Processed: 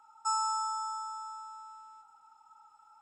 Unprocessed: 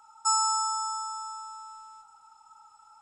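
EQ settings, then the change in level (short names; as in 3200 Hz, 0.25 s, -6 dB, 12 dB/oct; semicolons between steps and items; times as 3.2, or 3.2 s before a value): tone controls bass -5 dB, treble -8 dB; bell 250 Hz +4 dB 1.2 oct; -4.0 dB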